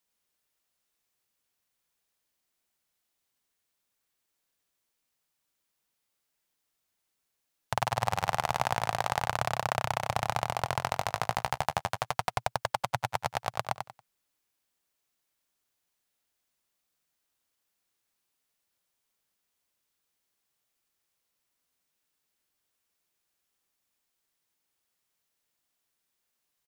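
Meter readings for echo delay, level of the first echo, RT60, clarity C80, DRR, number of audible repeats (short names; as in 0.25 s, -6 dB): 93 ms, -6.0 dB, none, none, none, 3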